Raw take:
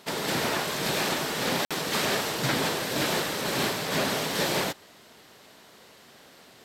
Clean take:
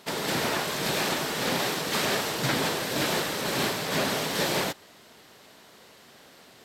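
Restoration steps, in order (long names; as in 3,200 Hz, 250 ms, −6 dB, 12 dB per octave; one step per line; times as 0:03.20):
clipped peaks rebuilt −17.5 dBFS
repair the gap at 0:01.65, 56 ms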